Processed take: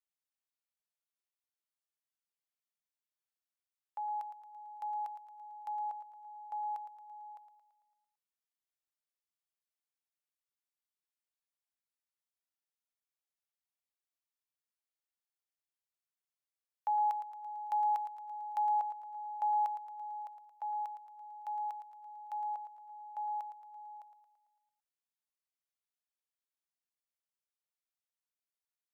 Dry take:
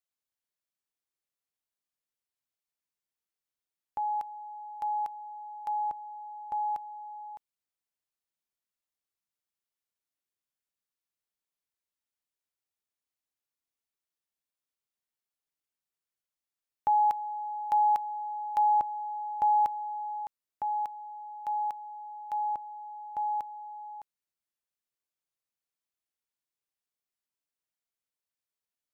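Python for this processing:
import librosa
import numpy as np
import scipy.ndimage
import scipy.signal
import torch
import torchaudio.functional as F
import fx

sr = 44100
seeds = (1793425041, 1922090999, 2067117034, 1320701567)

y = scipy.signal.sosfilt(scipy.signal.butter(4, 580.0, 'highpass', fs=sr, output='sos'), x)
y = fx.echo_feedback(y, sr, ms=112, feedback_pct=57, wet_db=-10.5)
y = y * 10.0 ** (-7.0 / 20.0)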